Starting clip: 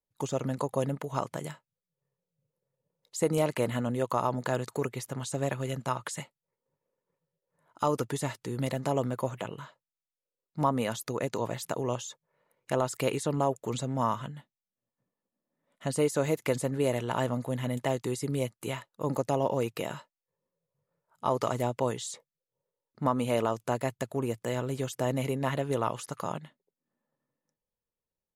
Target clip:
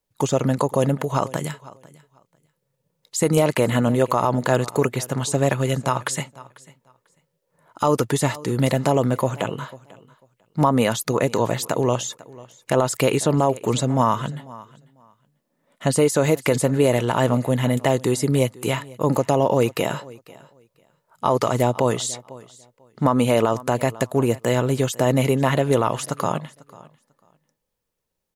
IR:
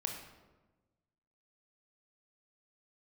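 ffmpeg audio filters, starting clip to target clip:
-filter_complex "[0:a]asettb=1/sr,asplit=3[a][b][c];[a]atrim=end=1.364[d];[b]atrim=start=1.36:end=3.37,asetpts=PTS-STARTPTS,afade=t=in:d=0.004:c=qsin,afade=t=out:st=2.006:d=0.004:c=qsin,equalizer=f=570:w=0.86:g=-5[e];[c]atrim=start=3.366[f];[d][e]acrossfade=d=0.004:c1=hsin:c2=qsin[g];[g][f]acrossfade=d=0.004:c1=qsin:c2=hsin,aecho=1:1:495|990:0.0794|0.0143,alimiter=level_in=17.5dB:limit=-1dB:release=50:level=0:latency=1,volume=-6dB"

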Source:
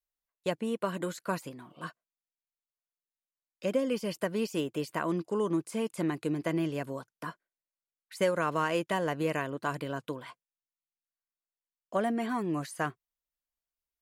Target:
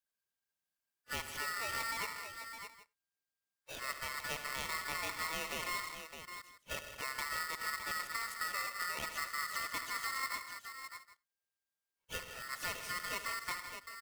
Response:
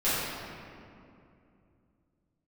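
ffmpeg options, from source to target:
-filter_complex "[0:a]areverse,acompressor=threshold=-37dB:ratio=12,acrusher=bits=3:mode=log:mix=0:aa=0.000001,aecho=1:1:74|120|157|215|612|773:0.251|0.158|0.266|0.2|0.376|0.1,asplit=2[a][b];[1:a]atrim=start_sample=2205,afade=t=out:st=0.15:d=0.01,atrim=end_sample=7056[c];[b][c]afir=irnorm=-1:irlink=0,volume=-31dB[d];[a][d]amix=inputs=2:normalize=0,aeval=exprs='val(0)*sgn(sin(2*PI*1600*n/s))':c=same"

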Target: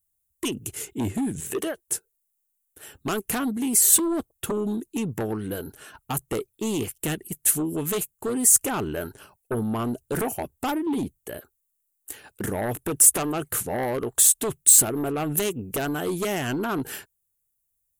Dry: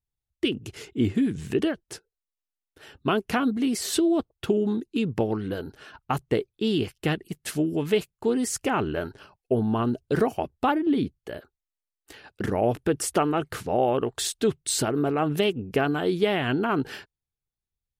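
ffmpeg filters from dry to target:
-filter_complex "[0:a]asettb=1/sr,asplit=3[a][b][c];[a]atrim=end=1.404[d];[b]atrim=start=1.4:end=1.88,asetpts=PTS-STARTPTS,afade=t=in:d=0.004:c=qsin,afade=t=out:st=0.476:d=0.004:c=qsin,lowshelf=f=320:t=q:w=1.5:g=-10[e];[c]atrim=start=1.876[f];[d][e]acrossfade=d=0.004:c1=hsin:c2=qsin[g];[g][f]acrossfade=d=0.004:c1=qsin:c2=hsin,aeval=exprs='0.316*sin(PI/2*2.51*val(0)/0.316)':c=same,aexciter=amount=10.5:drive=2.9:freq=6.9k,volume=-12dB"

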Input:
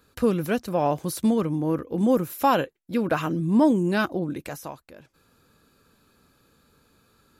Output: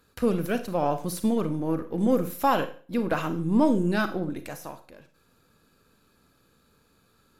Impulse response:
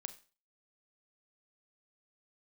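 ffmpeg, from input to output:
-filter_complex "[0:a]aeval=exprs='if(lt(val(0),0),0.708*val(0),val(0))':c=same[a];[1:a]atrim=start_sample=2205,asetrate=39249,aresample=44100[b];[a][b]afir=irnorm=-1:irlink=0,volume=2dB"

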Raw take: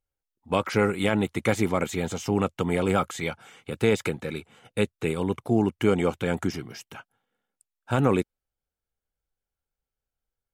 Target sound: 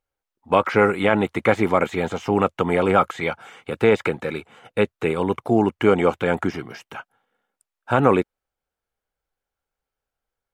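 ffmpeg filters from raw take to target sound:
-filter_complex "[0:a]acrossover=split=3500[a][b];[b]acompressor=threshold=-46dB:ratio=4:attack=1:release=60[c];[a][c]amix=inputs=2:normalize=0,equalizer=f=980:w=0.33:g=10,volume=-1dB"

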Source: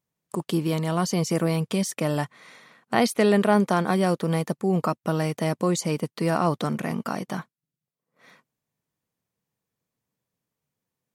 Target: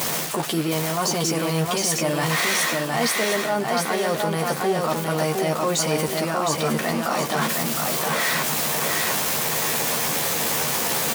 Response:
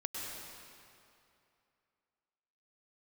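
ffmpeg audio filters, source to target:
-filter_complex "[0:a]aeval=exprs='val(0)+0.5*0.0355*sgn(val(0))':c=same,highpass=f=520:p=1,equalizer=f=710:w=2.1:g=2.5,areverse,acompressor=threshold=-34dB:ratio=6,areverse,asplit=2[a][b];[b]adelay=13,volume=-5dB[c];[a][c]amix=inputs=2:normalize=0,aecho=1:1:712|1424|2136|2848|3560:0.668|0.234|0.0819|0.0287|0.01,asplit=2[d][e];[e]alimiter=level_in=4dB:limit=-24dB:level=0:latency=1,volume=-4dB,volume=-1.5dB[f];[d][f]amix=inputs=2:normalize=0,volume=8dB"

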